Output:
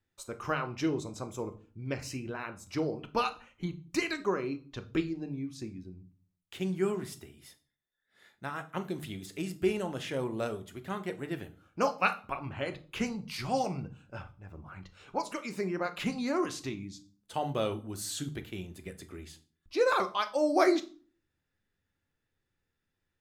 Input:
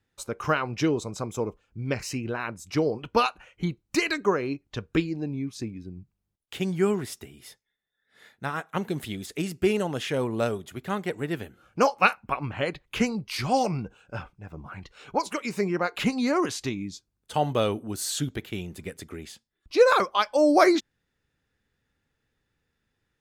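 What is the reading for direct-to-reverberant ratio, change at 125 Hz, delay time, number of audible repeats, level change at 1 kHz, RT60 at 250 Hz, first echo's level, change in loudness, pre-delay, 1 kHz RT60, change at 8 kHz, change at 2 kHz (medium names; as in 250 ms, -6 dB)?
8.0 dB, -7.0 dB, no echo, no echo, -7.0 dB, 0.60 s, no echo, -6.5 dB, 3 ms, 0.40 s, -7.0 dB, -7.0 dB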